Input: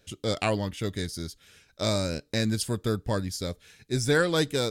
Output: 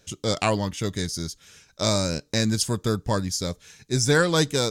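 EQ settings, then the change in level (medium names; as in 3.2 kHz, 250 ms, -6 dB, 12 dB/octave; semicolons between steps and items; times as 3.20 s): fifteen-band graphic EQ 160 Hz +4 dB, 1 kHz +5 dB, 6.3 kHz +9 dB; +2.0 dB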